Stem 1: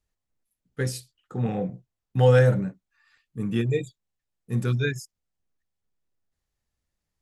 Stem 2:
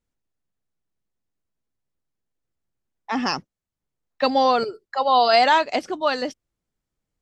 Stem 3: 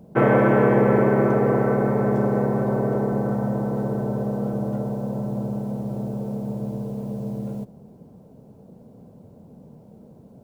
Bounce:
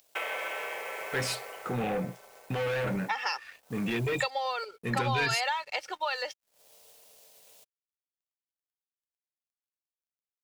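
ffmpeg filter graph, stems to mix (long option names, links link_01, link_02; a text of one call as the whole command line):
ffmpeg -i stem1.wav -i stem2.wav -i stem3.wav -filter_complex "[0:a]asplit=2[link_01][link_02];[link_02]highpass=frequency=720:poles=1,volume=28dB,asoftclip=type=tanh:threshold=-7.5dB[link_03];[link_01][link_03]amix=inputs=2:normalize=0,lowpass=frequency=2700:poles=1,volume=-6dB,alimiter=limit=-18.5dB:level=0:latency=1:release=33,adelay=350,volume=-7.5dB[link_04];[1:a]aecho=1:1:2.2:0.72,volume=-2.5dB,asplit=2[link_05][link_06];[2:a]equalizer=frequency=1800:width_type=o:width=0.77:gain=5,acompressor=threshold=-28dB:ratio=2.5,aexciter=amount=15.4:drive=2.6:freq=2700,volume=-6.5dB,afade=type=out:start_time=1.19:duration=0.7:silence=0.334965[link_07];[link_06]apad=whole_len=460392[link_08];[link_07][link_08]sidechaincompress=threshold=-42dB:ratio=10:attack=9.9:release=293[link_09];[link_05][link_09]amix=inputs=2:normalize=0,highpass=frequency=580:width=0.5412,highpass=frequency=580:width=1.3066,acompressor=threshold=-29dB:ratio=12,volume=0dB[link_10];[link_04][link_10]amix=inputs=2:normalize=0,equalizer=frequency=2400:width_type=o:width=1.1:gain=7,aeval=exprs='sgn(val(0))*max(abs(val(0))-0.00141,0)':channel_layout=same" out.wav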